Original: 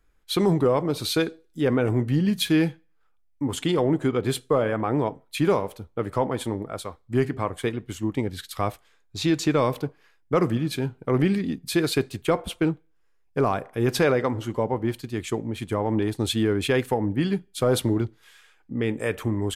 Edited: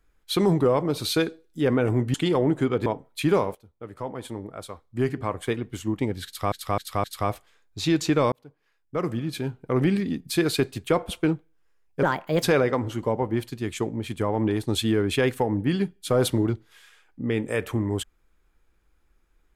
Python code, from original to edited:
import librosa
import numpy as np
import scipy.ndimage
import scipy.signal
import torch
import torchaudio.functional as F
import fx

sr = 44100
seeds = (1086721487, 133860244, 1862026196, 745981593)

y = fx.edit(x, sr, fx.cut(start_s=2.14, length_s=1.43),
    fx.cut(start_s=4.29, length_s=0.73),
    fx.fade_in_from(start_s=5.71, length_s=2.02, floor_db=-17.0),
    fx.repeat(start_s=8.42, length_s=0.26, count=4),
    fx.fade_in_span(start_s=9.7, length_s=2.02, curve='qsin'),
    fx.speed_span(start_s=13.41, length_s=0.53, speed=1.34), tone=tone)